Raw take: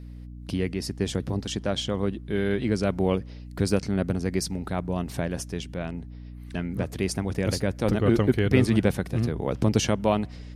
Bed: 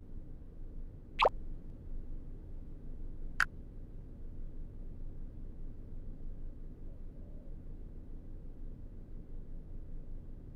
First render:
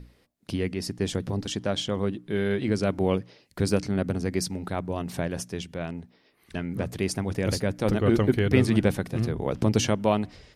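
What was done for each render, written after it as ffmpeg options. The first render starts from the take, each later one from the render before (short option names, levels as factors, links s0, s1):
-af "bandreject=f=60:t=h:w=6,bandreject=f=120:t=h:w=6,bandreject=f=180:t=h:w=6,bandreject=f=240:t=h:w=6,bandreject=f=300:t=h:w=6"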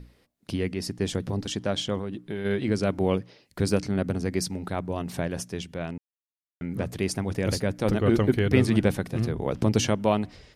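-filter_complex "[0:a]asplit=3[s0][s1][s2];[s0]afade=t=out:st=1.98:d=0.02[s3];[s1]acompressor=threshold=0.0447:ratio=6:attack=3.2:release=140:knee=1:detection=peak,afade=t=in:st=1.98:d=0.02,afade=t=out:st=2.44:d=0.02[s4];[s2]afade=t=in:st=2.44:d=0.02[s5];[s3][s4][s5]amix=inputs=3:normalize=0,asplit=3[s6][s7][s8];[s6]atrim=end=5.98,asetpts=PTS-STARTPTS,afade=t=out:st=5.976:d=0.004:c=hsin[s9];[s7]atrim=start=5.98:end=6.61,asetpts=PTS-STARTPTS,volume=0[s10];[s8]atrim=start=6.61,asetpts=PTS-STARTPTS,afade=t=in:d=0.004:c=hsin[s11];[s9][s10][s11]concat=n=3:v=0:a=1"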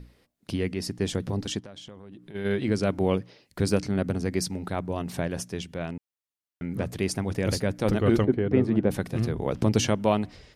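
-filter_complex "[0:a]asplit=3[s0][s1][s2];[s0]afade=t=out:st=1.59:d=0.02[s3];[s1]acompressor=threshold=0.00794:ratio=5:attack=3.2:release=140:knee=1:detection=peak,afade=t=in:st=1.59:d=0.02,afade=t=out:st=2.34:d=0.02[s4];[s2]afade=t=in:st=2.34:d=0.02[s5];[s3][s4][s5]amix=inputs=3:normalize=0,asplit=3[s6][s7][s8];[s6]afade=t=out:st=8.24:d=0.02[s9];[s7]bandpass=f=350:t=q:w=0.53,afade=t=in:st=8.24:d=0.02,afade=t=out:st=8.9:d=0.02[s10];[s8]afade=t=in:st=8.9:d=0.02[s11];[s9][s10][s11]amix=inputs=3:normalize=0"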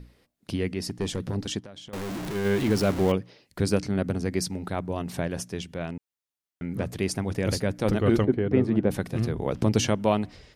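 -filter_complex "[0:a]asettb=1/sr,asplit=3[s0][s1][s2];[s0]atrim=end=0.834[s3];[s1]atrim=start=0.83:end=1.36,asetpts=PTS-STARTPTS,afade=t=in:d=0.004:c=qsin,afade=t=out:st=0.526:d=0.004:c=qsin,volume=11.9,asoftclip=hard,volume=0.0841[s4];[s2]atrim=start=1.356[s5];[s3][s4]acrossfade=d=0.004:c1=hsin:c2=qsin[s6];[s6][s5]acrossfade=d=0.004:c1=qsin:c2=hsin,asettb=1/sr,asplit=3[s7][s8][s9];[s7]atrim=end=1.934[s10];[s8]atrim=start=1.93:end=3.12,asetpts=PTS-STARTPTS,afade=t=in:d=0.004:c=qsin,afade=t=out:st=1.186:d=0.004:c=qsin,aeval=exprs='val(0)+0.5*0.0398*sgn(val(0))':c=same[s11];[s9]atrim=start=3.116[s12];[s10][s11]acrossfade=d=0.004:c1=hsin:c2=qsin[s13];[s13][s12]acrossfade=d=0.004:c1=qsin:c2=hsin"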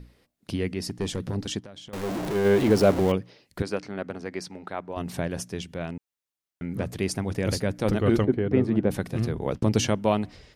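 -filter_complex "[0:a]asettb=1/sr,asplit=3[s0][s1][s2];[s0]atrim=end=2.034[s3];[s1]atrim=start=2.03:end=3,asetpts=PTS-STARTPTS,afade=t=in:d=0.004:c=qsin,afade=t=out:st=0.966:d=0.004:c=qsin,equalizer=f=560:t=o:w=1.7:g=7.5[s4];[s2]atrim=start=2.996[s5];[s3][s4]acrossfade=d=0.004:c1=hsin:c2=qsin[s6];[s6][s5]acrossfade=d=0.004:c1=qsin:c2=hsin,asettb=1/sr,asplit=3[s7][s8][s9];[s7]atrim=end=3.624[s10];[s8]atrim=start=3.62:end=4.97,asetpts=PTS-STARTPTS,afade=t=in:d=0.004:c=qsin,afade=t=out:st=1.346:d=0.004:c=qsin,bandpass=f=1200:t=q:w=0.51[s11];[s9]atrim=start=4.966[s12];[s10][s11]acrossfade=d=0.004:c1=hsin:c2=qsin[s13];[s13][s12]acrossfade=d=0.004:c1=qsin:c2=hsin,asettb=1/sr,asplit=3[s14][s15][s16];[s14]atrim=end=9.394[s17];[s15]atrim=start=9.39:end=10.09,asetpts=PTS-STARTPTS,afade=t=in:d=0.004:c=qsin,afade=t=out:st=0.696:d=0.004:c=qsin,agate=range=0.0224:threshold=0.0282:ratio=3:release=100:detection=peak[s18];[s16]atrim=start=10.086[s19];[s17][s18]acrossfade=d=0.004:c1=hsin:c2=qsin[s20];[s20][s19]acrossfade=d=0.004:c1=qsin:c2=hsin"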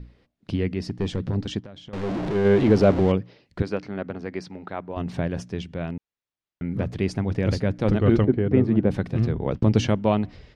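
-af "lowpass=4200,lowshelf=f=260:g=6"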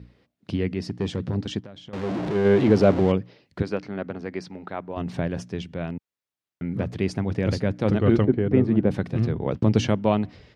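-af "highpass=83"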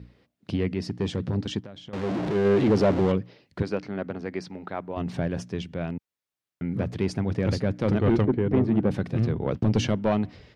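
-af "asoftclip=type=tanh:threshold=0.211"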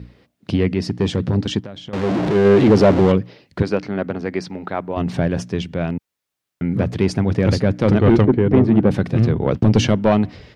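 -af "volume=2.66"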